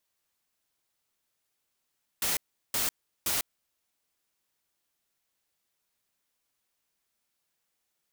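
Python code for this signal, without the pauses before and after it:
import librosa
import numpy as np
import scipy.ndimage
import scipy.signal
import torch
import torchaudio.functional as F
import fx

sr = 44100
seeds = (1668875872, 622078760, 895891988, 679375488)

y = fx.noise_burst(sr, seeds[0], colour='white', on_s=0.15, off_s=0.37, bursts=3, level_db=-28.5)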